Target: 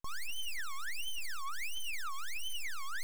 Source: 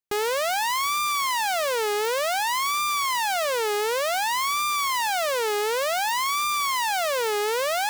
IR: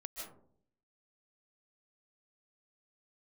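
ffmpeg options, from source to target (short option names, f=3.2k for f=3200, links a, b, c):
-af "lowpass=6.9k,bass=f=250:g=-9,treble=f=4k:g=-6,bandreject=f=2.7k:w=9.5,alimiter=level_in=4dB:limit=-24dB:level=0:latency=1,volume=-4dB,aeval=exprs='max(val(0),0)':c=same,aphaser=in_gain=1:out_gain=1:delay=1.2:decay=0.47:speed=1.3:type=triangular,asetrate=114660,aresample=44100,aeval=exprs='clip(val(0),-1,0.02)':c=same,volume=2dB"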